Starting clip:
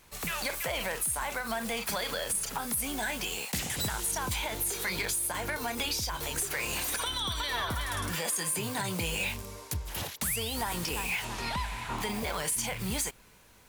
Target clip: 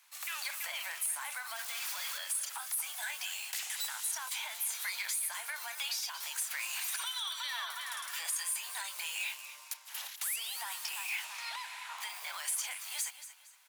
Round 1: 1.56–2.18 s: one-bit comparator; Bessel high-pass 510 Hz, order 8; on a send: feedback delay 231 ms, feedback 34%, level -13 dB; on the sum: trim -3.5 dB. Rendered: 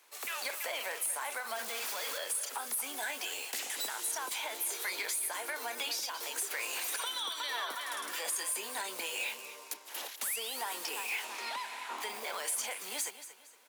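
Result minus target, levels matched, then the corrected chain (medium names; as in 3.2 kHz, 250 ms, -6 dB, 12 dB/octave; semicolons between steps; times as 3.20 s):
500 Hz band +14.5 dB
1.56–2.18 s: one-bit comparator; Bessel high-pass 1.3 kHz, order 8; on a send: feedback delay 231 ms, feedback 34%, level -13 dB; on the sum: trim -3.5 dB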